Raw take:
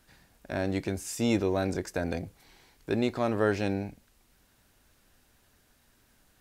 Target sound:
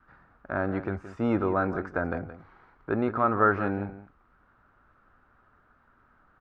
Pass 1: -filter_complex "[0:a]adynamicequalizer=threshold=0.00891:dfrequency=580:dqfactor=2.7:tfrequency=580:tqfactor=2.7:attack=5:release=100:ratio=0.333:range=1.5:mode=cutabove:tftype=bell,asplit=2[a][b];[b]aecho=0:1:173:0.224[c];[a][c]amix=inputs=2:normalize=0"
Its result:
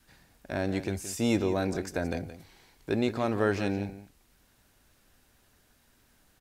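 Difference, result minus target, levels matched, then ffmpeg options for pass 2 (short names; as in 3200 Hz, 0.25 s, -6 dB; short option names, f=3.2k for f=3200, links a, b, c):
1000 Hz band -7.0 dB
-filter_complex "[0:a]adynamicequalizer=threshold=0.00891:dfrequency=580:dqfactor=2.7:tfrequency=580:tqfactor=2.7:attack=5:release=100:ratio=0.333:range=1.5:mode=cutabove:tftype=bell,lowpass=f=1.3k:t=q:w=5.8,asplit=2[a][b];[b]aecho=0:1:173:0.224[c];[a][c]amix=inputs=2:normalize=0"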